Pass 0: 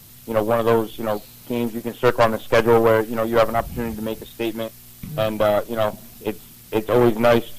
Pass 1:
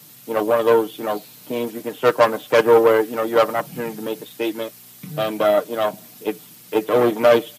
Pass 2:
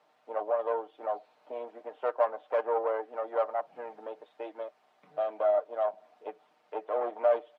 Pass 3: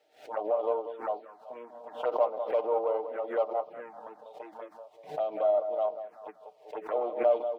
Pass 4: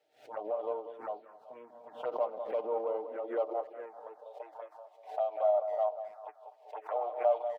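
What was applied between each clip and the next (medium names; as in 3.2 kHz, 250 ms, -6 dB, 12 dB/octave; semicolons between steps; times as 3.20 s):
high-pass 160 Hz 24 dB/octave; comb 6.6 ms, depth 52%
in parallel at +2 dB: compression, threshold -26 dBFS, peak gain reduction 16.5 dB; on the sum: ladder band-pass 790 Hz, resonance 50%; trim -5 dB
feedback echo behind a low-pass 192 ms, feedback 32%, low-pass 1.8 kHz, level -9 dB; touch-sensitive phaser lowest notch 180 Hz, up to 1.7 kHz, full sweep at -29 dBFS; swell ahead of each attack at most 150 dB/s; trim +2 dB
high-pass sweep 96 Hz -> 730 Hz, 1.43–4.83 s; speakerphone echo 250 ms, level -20 dB; trim -6.5 dB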